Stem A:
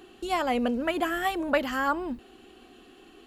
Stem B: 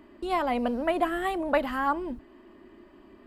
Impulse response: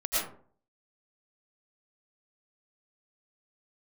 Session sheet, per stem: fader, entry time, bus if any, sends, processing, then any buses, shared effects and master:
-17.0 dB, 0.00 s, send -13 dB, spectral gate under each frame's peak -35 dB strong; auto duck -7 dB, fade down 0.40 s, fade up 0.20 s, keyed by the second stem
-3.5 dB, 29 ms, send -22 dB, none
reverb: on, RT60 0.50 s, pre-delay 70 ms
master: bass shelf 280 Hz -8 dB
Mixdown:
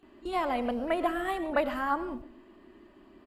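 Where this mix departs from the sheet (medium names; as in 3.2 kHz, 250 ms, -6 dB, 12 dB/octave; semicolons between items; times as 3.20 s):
stem B: polarity flipped; master: missing bass shelf 280 Hz -8 dB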